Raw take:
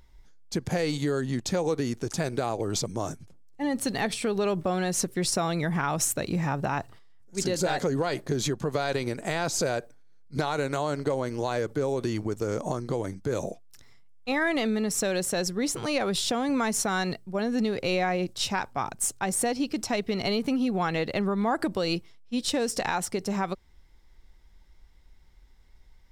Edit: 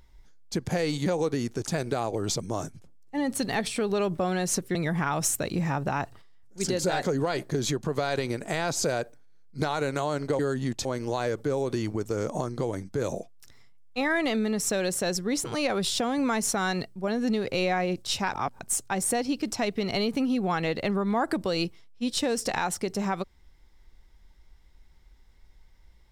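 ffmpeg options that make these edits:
-filter_complex "[0:a]asplit=7[s0][s1][s2][s3][s4][s5][s6];[s0]atrim=end=1.062[s7];[s1]atrim=start=1.518:end=5.212[s8];[s2]atrim=start=5.518:end=11.162[s9];[s3]atrim=start=1.058:end=1.522[s10];[s4]atrim=start=11.158:end=18.652[s11];[s5]atrim=start=18.648:end=18.902,asetpts=PTS-STARTPTS,areverse[s12];[s6]atrim=start=18.898[s13];[s7][s8]acrossfade=d=0.004:c1=hsin:c2=hsin[s14];[s14][s9]acrossfade=d=0.004:c1=hsin:c2=hsin[s15];[s15][s10]acrossfade=d=0.004:c1=hsin:c2=hsin[s16];[s16][s11]acrossfade=d=0.004:c1=hsin:c2=hsin[s17];[s17][s12]acrossfade=d=0.004:c1=hsin:c2=hsin[s18];[s18][s13]acrossfade=d=0.004:c1=hsin:c2=hsin"

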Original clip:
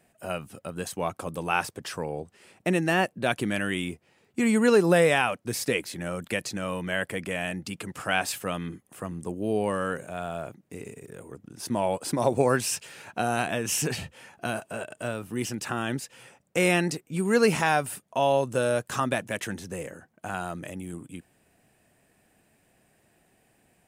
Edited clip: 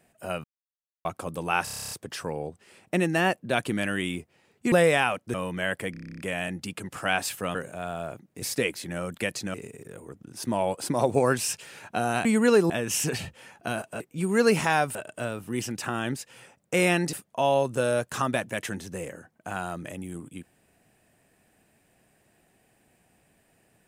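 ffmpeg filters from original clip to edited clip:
-filter_complex "[0:a]asplit=31[s0][s1][s2][s3][s4][s5][s6][s7][s8][s9][s10][s11][s12][s13][s14][s15][s16][s17][s18][s19][s20][s21][s22][s23][s24][s25][s26][s27][s28][s29][s30];[s0]atrim=end=0.44,asetpts=PTS-STARTPTS,afade=t=out:st=0.436:d=0.004:c=hsin[s31];[s1]atrim=start=0.44:end=1.05,asetpts=PTS-STARTPTS,volume=0[s32];[s2]atrim=start=1.05:end=1.672,asetpts=PTS-STARTPTS,afade=t=in:d=0.004:c=hsin[s33];[s3]atrim=start=1.638:end=1.672[s34];[s4]atrim=start=1.638:end=1.672[s35];[s5]atrim=start=1.638:end=1.672[s36];[s6]atrim=start=1.638:end=1.672[s37];[s7]atrim=start=1.638:end=1.672[s38];[s8]atrim=start=1.638:end=1.672[s39];[s9]atrim=start=1.638:end=1.672[s40];[s10]atrim=start=1.638:end=1.672[s41];[s11]atrim=start=1.638:end=4.452[s42];[s12]atrim=start=4.898:end=5.522[s43];[s13]atrim=start=6.638:end=7.242[s44];[s14]atrim=start=7.208:end=7.242[s45];[s15]atrim=start=7.208:end=7.242[s46];[s16]atrim=start=7.208:end=7.242[s47];[s17]atrim=start=7.208:end=7.242[s48];[s18]atrim=start=7.208:end=7.242[s49];[s19]atrim=start=7.208:end=7.242[s50];[s20]atrim=start=7.208:end=7.242[s51];[s21]atrim=start=7.208:end=7.242[s52];[s22]atrim=start=7.208:end=8.582[s53];[s23]atrim=start=9.898:end=10.772[s54];[s24]atrim=start=5.518:end=6.642[s55];[s25]atrim=start=10.768:end=13.482[s56];[s26]atrim=start=4.448:end=4.902[s57];[s27]atrim=start=13.478:end=14.782[s58];[s28]atrim=start=16.958:end=17.912[s59];[s29]atrim=start=14.778:end=16.962[s60];[s30]atrim=start=17.908[s61];[s31][s32][s33]concat=n=3:v=0:a=1[s62];[s62][s34]acrossfade=d=0.004:c1=hsin:c2=hsin[s63];[s63][s35]acrossfade=d=0.004:c1=hsin:c2=hsin[s64];[s64][s36]acrossfade=d=0.004:c1=hsin:c2=hsin[s65];[s65][s37]acrossfade=d=0.004:c1=hsin:c2=hsin[s66];[s66][s38]acrossfade=d=0.004:c1=hsin:c2=hsin[s67];[s67][s39]acrossfade=d=0.004:c1=hsin:c2=hsin[s68];[s68][s40]acrossfade=d=0.004:c1=hsin:c2=hsin[s69];[s69][s41]acrossfade=d=0.004:c1=hsin:c2=hsin[s70];[s70][s42]acrossfade=d=0.004:c1=hsin:c2=hsin[s71];[s71][s43]acrossfade=d=0.004:c1=hsin:c2=hsin[s72];[s72][s44]acrossfade=d=0.004:c1=hsin:c2=hsin[s73];[s73][s45]acrossfade=d=0.004:c1=hsin:c2=hsin[s74];[s74][s46]acrossfade=d=0.004:c1=hsin:c2=hsin[s75];[s75][s47]acrossfade=d=0.004:c1=hsin:c2=hsin[s76];[s76][s48]acrossfade=d=0.004:c1=hsin:c2=hsin[s77];[s77][s49]acrossfade=d=0.004:c1=hsin:c2=hsin[s78];[s78][s50]acrossfade=d=0.004:c1=hsin:c2=hsin[s79];[s79][s51]acrossfade=d=0.004:c1=hsin:c2=hsin[s80];[s80][s52]acrossfade=d=0.004:c1=hsin:c2=hsin[s81];[s81][s53]acrossfade=d=0.004:c1=hsin:c2=hsin[s82];[s82][s54]acrossfade=d=0.004:c1=hsin:c2=hsin[s83];[s83][s55]acrossfade=d=0.004:c1=hsin:c2=hsin[s84];[s84][s56]acrossfade=d=0.004:c1=hsin:c2=hsin[s85];[s85][s57]acrossfade=d=0.004:c1=hsin:c2=hsin[s86];[s86][s58]acrossfade=d=0.004:c1=hsin:c2=hsin[s87];[s87][s59]acrossfade=d=0.004:c1=hsin:c2=hsin[s88];[s88][s60]acrossfade=d=0.004:c1=hsin:c2=hsin[s89];[s89][s61]acrossfade=d=0.004:c1=hsin:c2=hsin"

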